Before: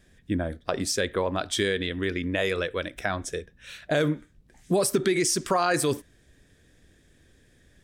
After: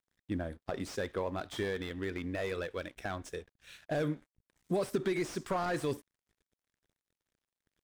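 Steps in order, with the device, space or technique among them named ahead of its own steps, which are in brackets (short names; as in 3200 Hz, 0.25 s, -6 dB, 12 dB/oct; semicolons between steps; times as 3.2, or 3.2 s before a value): early transistor amplifier (crossover distortion -52.5 dBFS; slew limiter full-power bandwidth 79 Hz); gain -8 dB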